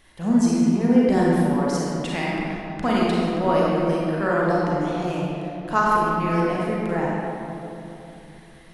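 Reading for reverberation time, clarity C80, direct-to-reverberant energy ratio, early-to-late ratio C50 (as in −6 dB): 3.0 s, −2.0 dB, −6.0 dB, −4.0 dB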